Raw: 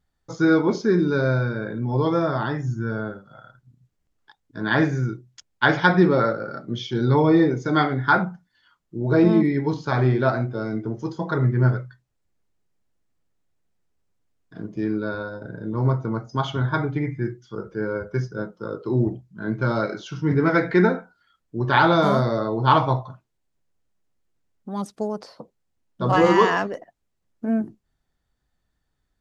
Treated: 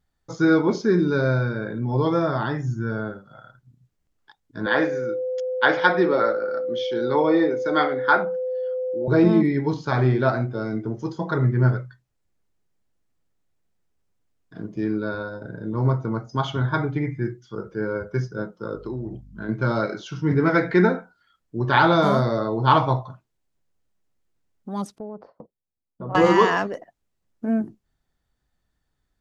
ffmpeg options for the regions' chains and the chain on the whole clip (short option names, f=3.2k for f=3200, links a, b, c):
-filter_complex "[0:a]asettb=1/sr,asplit=3[a][b][c];[a]atrim=end=4.664[d];[b]atrim=start=4.66:end=9.08,asetpts=PTS-STARTPTS,afade=t=in:d=0.004:c=qsin,afade=t=out:st=4.416:d=0.004:c=qsin,aeval=exprs='val(0)+0.0708*sin(2*PI*510*n/s)':c=same,acrossover=split=270 5900:gain=0.112 1 0.251[e][f][g];[e][f][g]amix=inputs=3:normalize=0[h];[c]atrim=start=9.076[i];[d][h]acrossfade=d=0.004:c1=hsin:c2=qsin[j];[j][i]acrossfade=d=0.004:c1=qsin:c2=hsin,asettb=1/sr,asplit=3[k][l][m];[k]atrim=end=18.754[n];[l]atrim=start=18.75:end=19.49,asetpts=PTS-STARTPTS,afade=t=in:d=0.004:c=qsin,afade=t=out:st=0.736:d=0.004:c=qsin,acompressor=threshold=-27dB:ratio=6:attack=3.2:release=140:knee=1:detection=peak,aeval=exprs='val(0)+0.00562*(sin(2*PI*50*n/s)+sin(2*PI*2*50*n/s)/2+sin(2*PI*3*50*n/s)/3+sin(2*PI*4*50*n/s)/4+sin(2*PI*5*50*n/s)/5)':c=same[o];[m]atrim=start=19.486[p];[n][o]acrossfade=d=0.004:c1=hsin:c2=qsin[q];[q][p]acrossfade=d=0.004:c1=qsin:c2=hsin,asettb=1/sr,asplit=3[r][s][t];[r]atrim=end=24.984[u];[s]atrim=start=24.98:end=26.15,asetpts=PTS-STARTPTS,afade=t=in:d=0.004:c=qsin,afade=t=out:st=1.166:d=0.004:c=qsin,agate=range=-14dB:threshold=-47dB:ratio=16:release=100:detection=peak,lowpass=1k,acompressor=threshold=-37dB:ratio=2:attack=3.2:release=140:knee=1:detection=peak[v];[t]atrim=start=26.146[w];[u][v]acrossfade=d=0.004:c1=hsin:c2=qsin[x];[x][w]acrossfade=d=0.004:c1=qsin:c2=hsin"